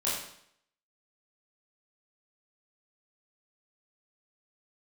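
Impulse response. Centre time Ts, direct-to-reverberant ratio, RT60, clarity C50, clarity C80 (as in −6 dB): 56 ms, −8.5 dB, 0.65 s, 1.5 dB, 5.0 dB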